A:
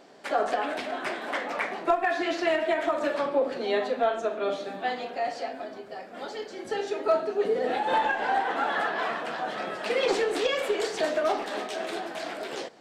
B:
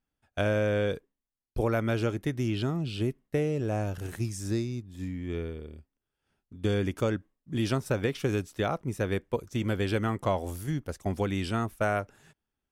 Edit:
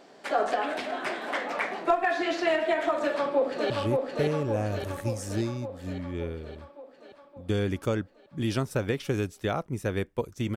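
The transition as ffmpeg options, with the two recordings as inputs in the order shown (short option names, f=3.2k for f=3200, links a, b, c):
-filter_complex "[0:a]apad=whole_dur=10.56,atrim=end=10.56,atrim=end=3.702[a];[1:a]atrim=start=2.848:end=9.71[b];[a][b]acrossfade=d=0.004:c1=hsin:c2=hsin,asplit=2[c][d];[d]afade=t=in:st=3.01:d=0.01,afade=t=out:st=3.7:d=0.01,aecho=0:1:570|1140|1710|2280|2850|3420|3990|4560|5130|5700:0.707946|0.460165|0.299107|0.19442|0.126373|0.0821423|0.0533925|0.0347051|0.0225583|0.0146629[e];[c][e]amix=inputs=2:normalize=0"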